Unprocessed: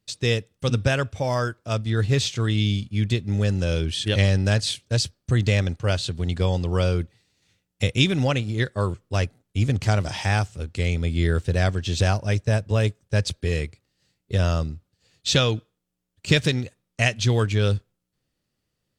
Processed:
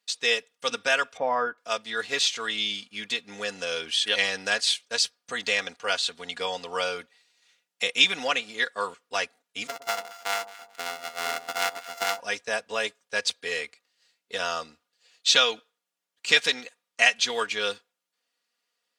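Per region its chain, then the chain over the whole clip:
1.17–1.58 LPF 1500 Hz + low shelf 490 Hz +8 dB
9.67–12.2 sample sorter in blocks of 64 samples + power-law curve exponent 2 + echo with dull and thin repeats by turns 0.11 s, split 960 Hz, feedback 52%, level -12.5 dB
whole clip: HPF 830 Hz 12 dB/oct; high shelf 8800 Hz -7 dB; comb 4.2 ms, depth 70%; gain +2.5 dB

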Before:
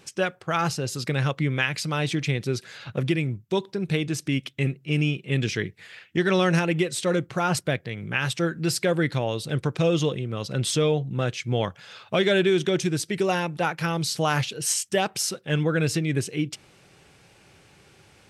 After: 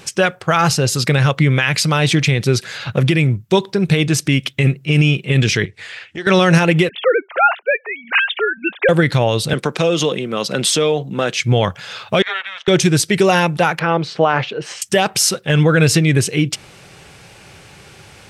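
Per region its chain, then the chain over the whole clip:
5.65–6.27 compressor 2:1, threshold -42 dBFS + LPF 9600 Hz 24 dB/oct + bell 170 Hz -9 dB 0.9 oct
6.89–8.89 sine-wave speech + HPF 610 Hz
9.53–11.39 HPF 190 Hz 24 dB/oct + compressor 2.5:1, threshold -25 dBFS
12.22–12.68 steep high-pass 760 Hz 48 dB/oct + ring modulator 190 Hz + tape spacing loss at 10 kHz 33 dB
13.79–14.82 BPF 350–2700 Hz + tilt -2.5 dB/oct
whole clip: bell 300 Hz -4 dB 1 oct; maximiser +16 dB; gain -2.5 dB

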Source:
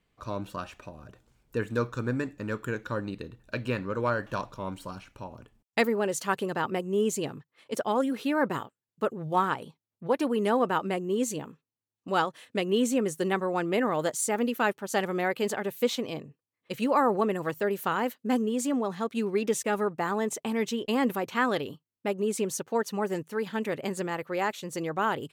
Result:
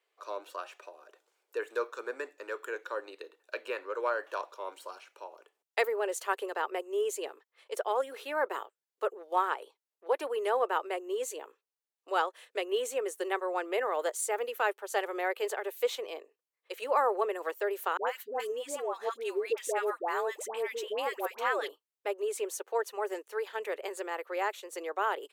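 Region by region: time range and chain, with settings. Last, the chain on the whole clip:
17.97–21.69 dispersion highs, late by 0.103 s, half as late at 850 Hz + three-band squash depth 40%
whole clip: steep high-pass 380 Hz 48 dB/oct; dynamic EQ 5200 Hz, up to -5 dB, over -50 dBFS, Q 1.2; gain -2.5 dB

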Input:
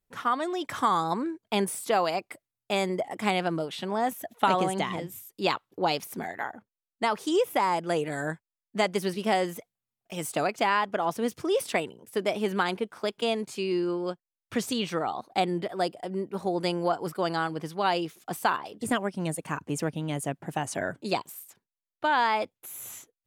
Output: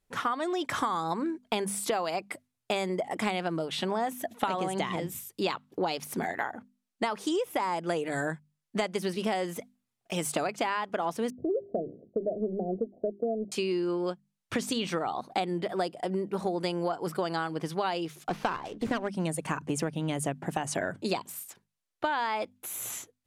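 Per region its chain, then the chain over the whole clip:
11.3–13.52 G.711 law mismatch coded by A + steep low-pass 700 Hz 96 dB/oct + notches 50/100/150/200/250/300/350/400 Hz
18.29–19.08 LPF 6400 Hz + running maximum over 5 samples
whole clip: LPF 12000 Hz 12 dB/oct; notches 50/100/150/200/250 Hz; compressor 6:1, threshold -33 dBFS; gain +6 dB

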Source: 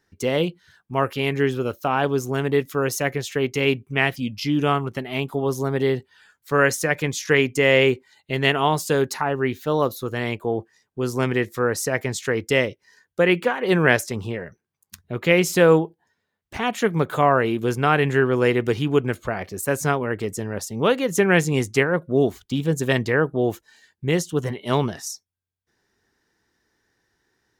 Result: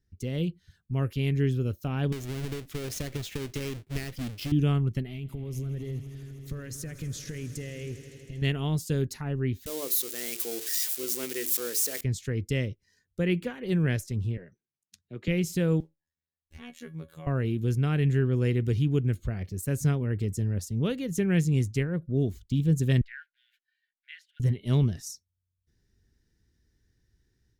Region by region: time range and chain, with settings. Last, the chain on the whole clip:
2.12–4.52 half-waves squared off + tone controls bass -14 dB, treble -6 dB + compressor 12:1, threshold -22 dBFS
5.07–8.42 compressor 5:1, threshold -30 dBFS + swelling echo 80 ms, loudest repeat 5, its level -18 dB + core saturation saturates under 420 Hz
9.66–12.01 switching spikes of -12.5 dBFS + HPF 320 Hz 24 dB/oct + notches 50/100/150/200/250/300/350/400/450 Hz
14.37–15.28 BPF 280–7100 Hz + three-band expander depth 40%
15.8–17.27 low shelf 370 Hz -6.5 dB + robotiser 80.1 Hz + resonator 280 Hz, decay 0.22 s, mix 70%
23.01–24.4 G.711 law mismatch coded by A + brick-wall FIR high-pass 1400 Hz + air absorption 460 m
whole clip: low shelf 140 Hz +6.5 dB; AGC gain up to 7 dB; passive tone stack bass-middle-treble 10-0-1; gain +8 dB

